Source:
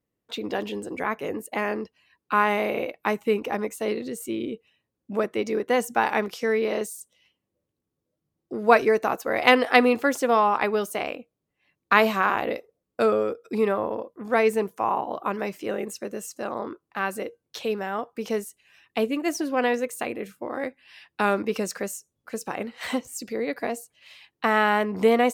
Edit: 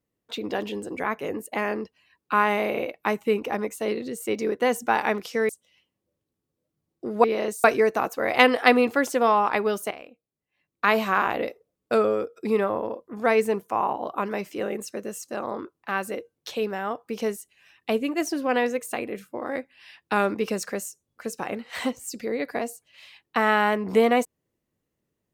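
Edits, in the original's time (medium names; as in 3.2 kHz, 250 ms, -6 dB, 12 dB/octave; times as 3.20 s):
4.27–5.35 s: delete
6.57–6.97 s: move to 8.72 s
10.99–12.22 s: fade in quadratic, from -12 dB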